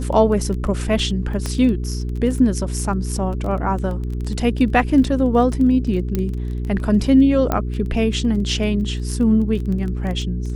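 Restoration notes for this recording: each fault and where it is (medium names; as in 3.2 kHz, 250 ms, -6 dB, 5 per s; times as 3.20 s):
crackle 13 per s -26 dBFS
hum 60 Hz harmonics 7 -24 dBFS
1.46 s: pop -11 dBFS
6.15 s: pop -9 dBFS
7.52 s: pop -7 dBFS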